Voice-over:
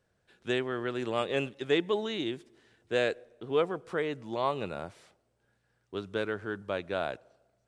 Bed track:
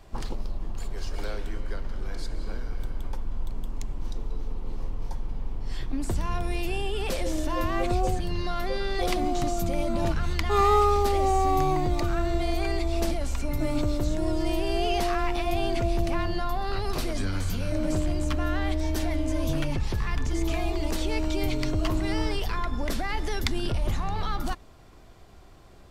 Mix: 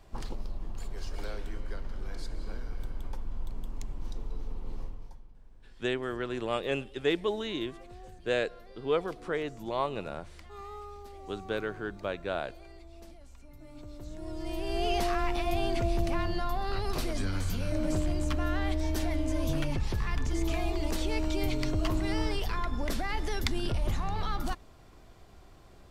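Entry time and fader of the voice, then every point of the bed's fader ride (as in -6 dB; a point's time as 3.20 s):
5.35 s, -1.0 dB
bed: 4.80 s -5 dB
5.34 s -23.5 dB
13.64 s -23.5 dB
14.88 s -3 dB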